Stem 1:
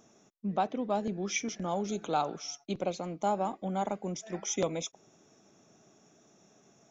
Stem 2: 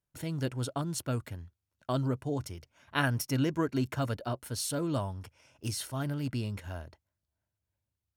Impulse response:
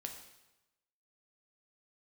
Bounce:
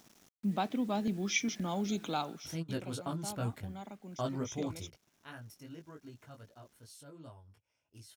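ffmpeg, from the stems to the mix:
-filter_complex "[0:a]equalizer=frequency=125:width_type=o:width=1:gain=4,equalizer=frequency=250:width_type=o:width=1:gain=7,equalizer=frequency=500:width_type=o:width=1:gain=-4,equalizer=frequency=2000:width_type=o:width=1:gain=5,equalizer=frequency=4000:width_type=o:width=1:gain=8,acrusher=bits=8:mix=0:aa=0.000001,volume=-4.5dB,afade=type=out:start_time=2.06:duration=0.53:silence=0.266073,asplit=2[link_01][link_02];[1:a]flanger=delay=17.5:depth=2.6:speed=2.6,adelay=2300,volume=-1dB[link_03];[link_02]apad=whole_len=461393[link_04];[link_03][link_04]sidechaingate=range=-16dB:threshold=-59dB:ratio=16:detection=peak[link_05];[link_01][link_05]amix=inputs=2:normalize=0"

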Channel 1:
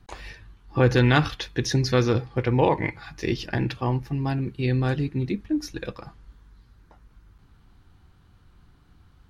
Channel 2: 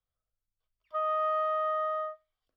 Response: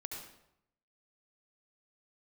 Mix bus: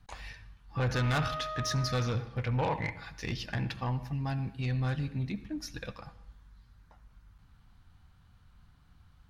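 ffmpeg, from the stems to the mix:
-filter_complex "[0:a]volume=-5.5dB,asplit=2[link_01][link_02];[link_02]volume=-10.5dB[link_03];[1:a]volume=-7dB[link_04];[2:a]atrim=start_sample=2205[link_05];[link_03][link_05]afir=irnorm=-1:irlink=0[link_06];[link_01][link_04][link_06]amix=inputs=3:normalize=0,equalizer=frequency=360:width_type=o:width=0.67:gain=-13,asoftclip=type=tanh:threshold=-24dB"

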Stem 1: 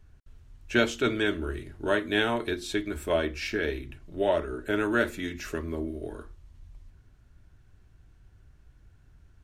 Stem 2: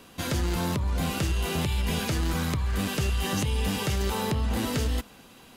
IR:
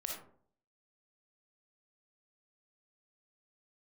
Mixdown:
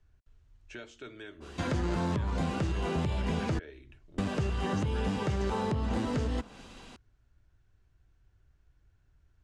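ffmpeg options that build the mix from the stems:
-filter_complex "[0:a]acompressor=threshold=-37dB:ratio=2.5,equalizer=frequency=200:width=1.5:gain=-5,volume=-9dB[link_01];[1:a]adynamicequalizer=threshold=0.00447:dfrequency=1500:dqfactor=0.7:tfrequency=1500:tqfactor=0.7:attack=5:release=100:ratio=0.375:range=2.5:mode=cutabove:tftype=highshelf,adelay=1400,volume=1dB,asplit=3[link_02][link_03][link_04];[link_02]atrim=end=3.59,asetpts=PTS-STARTPTS,afade=type=out:start_time=3.586:duration=0.004:curve=hsin[link_05];[link_03]atrim=start=3.59:end=4.18,asetpts=PTS-STARTPTS,volume=0[link_06];[link_04]atrim=start=4.18,asetpts=PTS-STARTPTS,afade=type=in:duration=0.004:curve=hsin[link_07];[link_05][link_06][link_07]concat=n=3:v=0:a=1[link_08];[link_01][link_08]amix=inputs=2:normalize=0,lowpass=frequency=8100:width=0.5412,lowpass=frequency=8100:width=1.3066,acrossover=split=88|2200[link_09][link_10][link_11];[link_09]acompressor=threshold=-37dB:ratio=4[link_12];[link_10]acompressor=threshold=-28dB:ratio=4[link_13];[link_11]acompressor=threshold=-49dB:ratio=4[link_14];[link_12][link_13][link_14]amix=inputs=3:normalize=0"

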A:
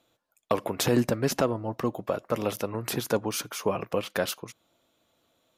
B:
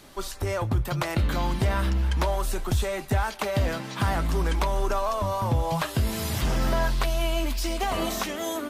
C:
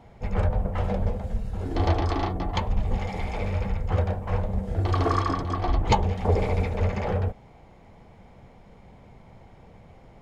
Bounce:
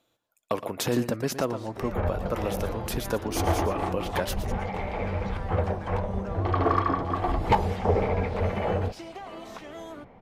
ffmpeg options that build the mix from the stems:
ffmpeg -i stem1.wav -i stem2.wav -i stem3.wav -filter_complex "[0:a]volume=-2.5dB,asplit=3[link_01][link_02][link_03];[link_02]volume=-12.5dB[link_04];[1:a]highpass=250,aemphasis=mode=reproduction:type=75fm,acompressor=threshold=-31dB:ratio=6,adelay=1350,volume=-6.5dB[link_05];[2:a]lowpass=2300,lowshelf=frequency=120:gain=-9,asoftclip=type=hard:threshold=-14dB,adelay=1600,volume=2dB[link_06];[link_03]apad=whole_len=521196[link_07];[link_06][link_07]sidechaincompress=threshold=-32dB:ratio=8:attack=48:release=291[link_08];[link_04]aecho=0:1:117:1[link_09];[link_01][link_05][link_08][link_09]amix=inputs=4:normalize=0" out.wav

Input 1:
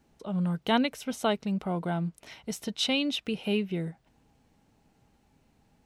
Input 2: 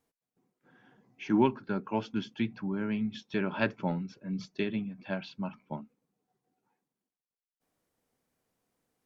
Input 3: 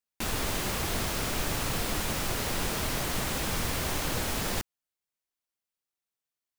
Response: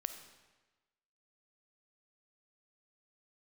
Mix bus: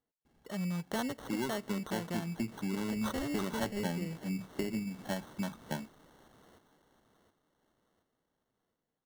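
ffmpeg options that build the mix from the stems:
-filter_complex "[0:a]adelay=250,volume=-5dB,asplit=2[link_01][link_02];[link_02]volume=-18dB[link_03];[1:a]lowpass=2300,dynaudnorm=framelen=290:gausssize=13:maxgain=13dB,volume=-8dB,asplit=2[link_04][link_05];[2:a]highpass=220,acrossover=split=450|5500[link_06][link_07][link_08];[link_06]acompressor=threshold=-46dB:ratio=4[link_09];[link_07]acompressor=threshold=-51dB:ratio=4[link_10];[link_08]acompressor=threshold=-46dB:ratio=4[link_11];[link_09][link_10][link_11]amix=inputs=3:normalize=0,adelay=1250,volume=-8.5dB,asplit=3[link_12][link_13][link_14];[link_13]volume=-13.5dB[link_15];[link_14]volume=-10.5dB[link_16];[link_05]apad=whole_len=345663[link_17];[link_12][link_17]sidechaincompress=threshold=-46dB:ratio=8:attack=6.3:release=215[link_18];[3:a]atrim=start_sample=2205[link_19];[link_03][link_15]amix=inputs=2:normalize=0[link_20];[link_20][link_19]afir=irnorm=-1:irlink=0[link_21];[link_16]aecho=0:1:720|1440|2160|2880|3600|4320:1|0.4|0.16|0.064|0.0256|0.0102[link_22];[link_01][link_04][link_18][link_21][link_22]amix=inputs=5:normalize=0,acrusher=samples=18:mix=1:aa=0.000001,acompressor=threshold=-33dB:ratio=3"

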